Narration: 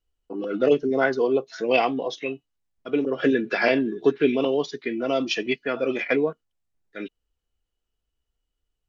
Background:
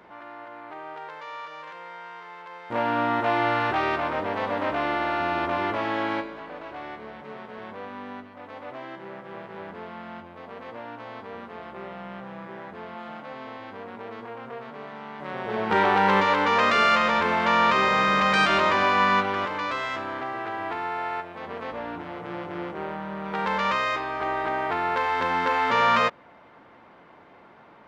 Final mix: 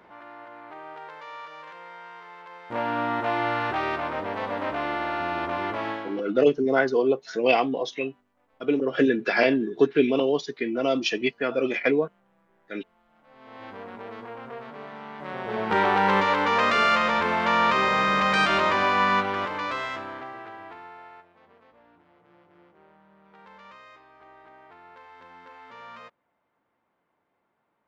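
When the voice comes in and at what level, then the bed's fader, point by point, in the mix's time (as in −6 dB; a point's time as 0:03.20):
5.75 s, 0.0 dB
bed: 0:05.90 −2.5 dB
0:06.37 −26.5 dB
0:13.09 −26.5 dB
0:13.64 −1 dB
0:19.81 −1 dB
0:21.71 −24 dB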